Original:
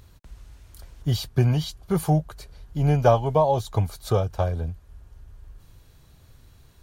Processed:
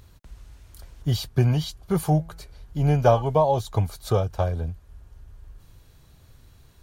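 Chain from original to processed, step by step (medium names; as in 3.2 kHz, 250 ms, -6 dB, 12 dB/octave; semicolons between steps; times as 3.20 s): 2.00–3.22 s: de-hum 164.5 Hz, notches 17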